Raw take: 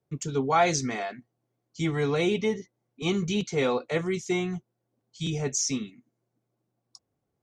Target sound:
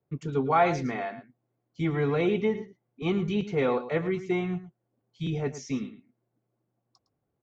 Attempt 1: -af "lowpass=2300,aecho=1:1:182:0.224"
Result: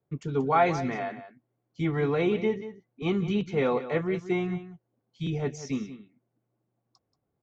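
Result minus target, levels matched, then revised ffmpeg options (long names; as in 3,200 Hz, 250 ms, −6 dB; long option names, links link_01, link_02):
echo 72 ms late
-af "lowpass=2300,aecho=1:1:110:0.224"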